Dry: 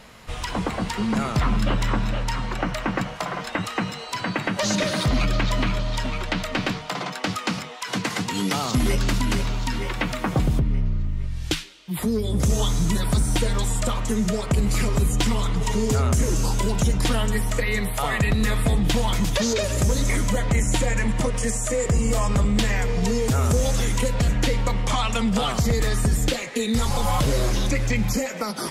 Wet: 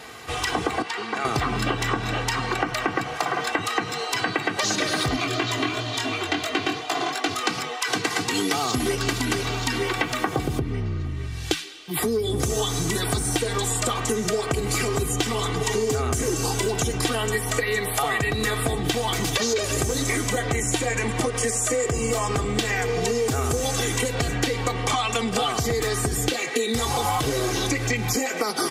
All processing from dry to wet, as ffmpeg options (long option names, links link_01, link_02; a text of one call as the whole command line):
ffmpeg -i in.wav -filter_complex "[0:a]asettb=1/sr,asplit=3[link_01][link_02][link_03];[link_01]atrim=end=0.824[link_04];[link_02]atrim=start=0.82:end=1.25,asetpts=PTS-STARTPTS,afade=type=in:duration=0.004:curve=qsin,afade=type=out:start_time=0.426:duration=0.004:curve=qsin,highpass=frequency=1300:poles=1,aemphasis=mode=reproduction:type=75fm[link_05];[link_03]atrim=start=1.246[link_06];[link_04][link_05]acrossfade=duration=0.004:curve1=hsin:curve2=qsin[link_07];[link_07][link_06]acrossfade=duration=0.004:curve1=qsin:curve2=hsin,asettb=1/sr,asplit=3[link_08][link_09][link_10];[link_08]atrim=end=5.164[link_11];[link_09]atrim=start=5.16:end=7.43,asetpts=PTS-STARTPTS,afade=type=in:duration=0.004:curve=qsin,afade=type=out:start_time=2.266:duration=0.004:curve=qsin,highpass=frequency=91:width=0.5412,highpass=frequency=91:width=1.3066,flanger=delay=16.5:depth=7.2:speed=2.9,aecho=1:1:2.9:0.48,atrim=end_sample=100107[link_12];[link_10]atrim=start=7.426[link_13];[link_11][link_12]acrossfade=duration=0.004:curve1=hsin:curve2=qsin[link_14];[link_14][link_13]acrossfade=duration=0.004:curve1=qsin:curve2=hsin,highpass=130,aecho=1:1:2.6:0.74,acompressor=threshold=-26dB:ratio=6,volume=5.5dB" out.wav